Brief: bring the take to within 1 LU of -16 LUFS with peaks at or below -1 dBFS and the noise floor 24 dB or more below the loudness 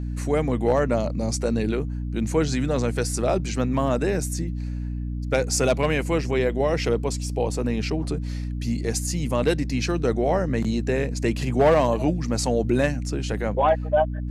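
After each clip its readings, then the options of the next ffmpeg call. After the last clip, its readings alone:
hum 60 Hz; harmonics up to 300 Hz; hum level -26 dBFS; loudness -24.0 LUFS; peak -9.0 dBFS; loudness target -16.0 LUFS
-> -af "bandreject=f=60:t=h:w=4,bandreject=f=120:t=h:w=4,bandreject=f=180:t=h:w=4,bandreject=f=240:t=h:w=4,bandreject=f=300:t=h:w=4"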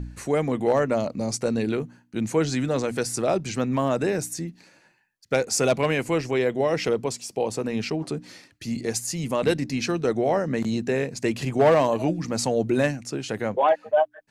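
hum none; loudness -25.0 LUFS; peak -9.0 dBFS; loudness target -16.0 LUFS
-> -af "volume=9dB,alimiter=limit=-1dB:level=0:latency=1"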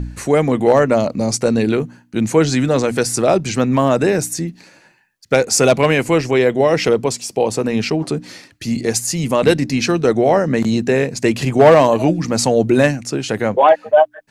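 loudness -16.0 LUFS; peak -1.0 dBFS; noise floor -53 dBFS

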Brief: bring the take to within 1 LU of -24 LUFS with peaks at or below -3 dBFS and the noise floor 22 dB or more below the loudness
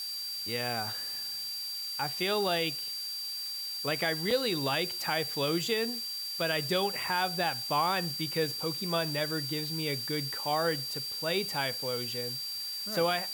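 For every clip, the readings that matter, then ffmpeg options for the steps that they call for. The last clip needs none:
steady tone 4700 Hz; tone level -35 dBFS; noise floor -37 dBFS; noise floor target -53 dBFS; loudness -31.0 LUFS; peak -16.0 dBFS; loudness target -24.0 LUFS
-> -af "bandreject=f=4.7k:w=30"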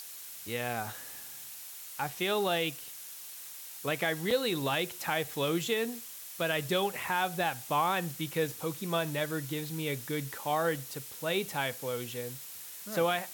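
steady tone none; noise floor -46 dBFS; noise floor target -55 dBFS
-> -af "afftdn=nr=9:nf=-46"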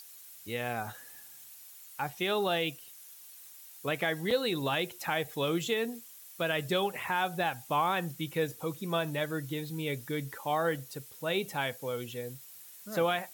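noise floor -51 dBFS; noise floor target -55 dBFS
-> -af "afftdn=nr=6:nf=-51"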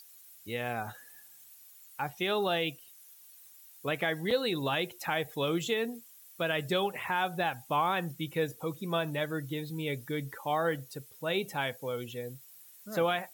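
noise floor -55 dBFS; loudness -32.5 LUFS; peak -17.5 dBFS; loudness target -24.0 LUFS
-> -af "volume=8.5dB"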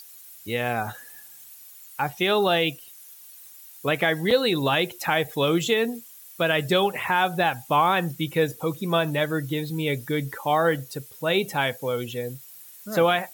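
loudness -24.0 LUFS; peak -9.0 dBFS; noise floor -47 dBFS

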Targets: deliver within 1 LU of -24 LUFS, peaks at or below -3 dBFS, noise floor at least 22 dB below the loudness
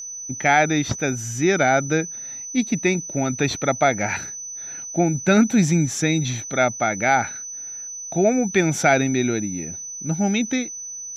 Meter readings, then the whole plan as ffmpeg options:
steady tone 6000 Hz; tone level -31 dBFS; loudness -21.5 LUFS; peak -4.5 dBFS; loudness target -24.0 LUFS
-> -af "bandreject=f=6k:w=30"
-af "volume=-2.5dB"

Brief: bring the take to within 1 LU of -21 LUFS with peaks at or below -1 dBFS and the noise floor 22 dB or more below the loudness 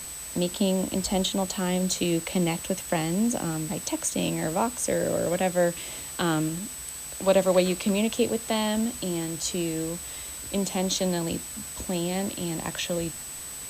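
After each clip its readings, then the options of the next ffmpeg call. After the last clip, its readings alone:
steady tone 8000 Hz; tone level -37 dBFS; noise floor -38 dBFS; noise floor target -49 dBFS; loudness -27.0 LUFS; peak -9.5 dBFS; loudness target -21.0 LUFS
-> -af "bandreject=f=8k:w=30"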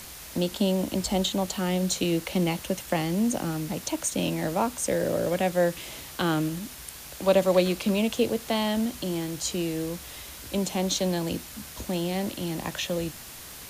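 steady tone none; noise floor -43 dBFS; noise floor target -50 dBFS
-> -af "afftdn=nr=7:nf=-43"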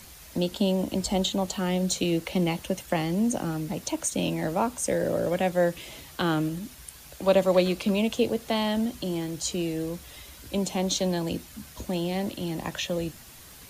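noise floor -48 dBFS; noise floor target -50 dBFS
-> -af "afftdn=nr=6:nf=-48"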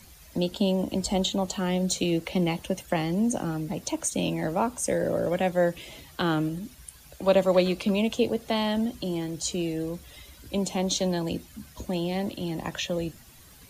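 noise floor -51 dBFS; loudness -27.5 LUFS; peak -10.0 dBFS; loudness target -21.0 LUFS
-> -af "volume=6.5dB"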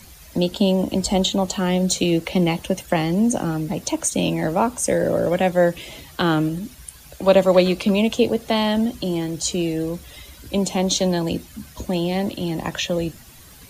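loudness -21.0 LUFS; peak -3.5 dBFS; noise floor -45 dBFS

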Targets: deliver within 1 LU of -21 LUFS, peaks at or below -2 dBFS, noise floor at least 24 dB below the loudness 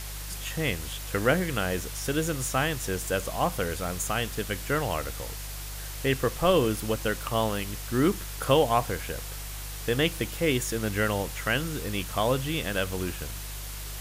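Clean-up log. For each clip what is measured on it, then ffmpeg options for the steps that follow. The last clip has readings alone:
hum 50 Hz; harmonics up to 150 Hz; hum level -36 dBFS; noise floor -37 dBFS; noise floor target -53 dBFS; loudness -28.5 LUFS; peak -8.5 dBFS; loudness target -21.0 LUFS
-> -af "bandreject=f=50:t=h:w=4,bandreject=f=100:t=h:w=4,bandreject=f=150:t=h:w=4"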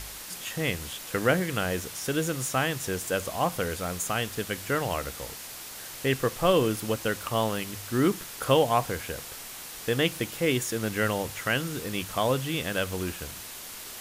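hum none; noise floor -41 dBFS; noise floor target -53 dBFS
-> -af "afftdn=nr=12:nf=-41"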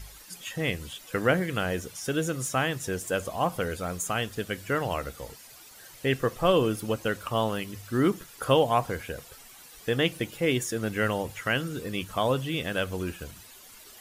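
noise floor -50 dBFS; noise floor target -53 dBFS
-> -af "afftdn=nr=6:nf=-50"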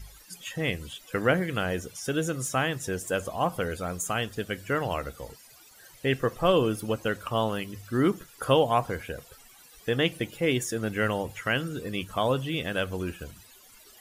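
noise floor -54 dBFS; loudness -28.5 LUFS; peak -8.5 dBFS; loudness target -21.0 LUFS
-> -af "volume=7.5dB,alimiter=limit=-2dB:level=0:latency=1"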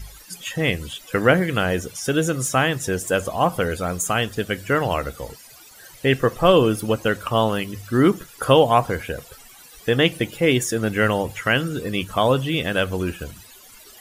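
loudness -21.0 LUFS; peak -2.0 dBFS; noise floor -46 dBFS

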